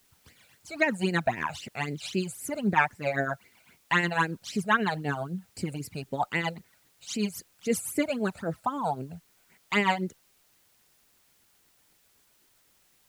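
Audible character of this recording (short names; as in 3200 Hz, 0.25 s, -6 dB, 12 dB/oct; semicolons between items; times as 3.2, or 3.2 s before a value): tremolo triangle 7.9 Hz, depth 65%; phasing stages 12, 3.8 Hz, lowest notch 310–1200 Hz; a quantiser's noise floor 12-bit, dither triangular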